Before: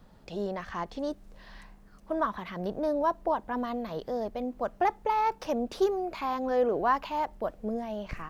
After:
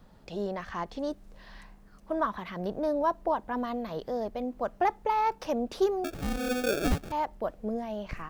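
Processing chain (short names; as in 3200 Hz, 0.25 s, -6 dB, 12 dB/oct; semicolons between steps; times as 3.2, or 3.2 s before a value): 6.04–7.12 sample-rate reducer 1000 Hz, jitter 0%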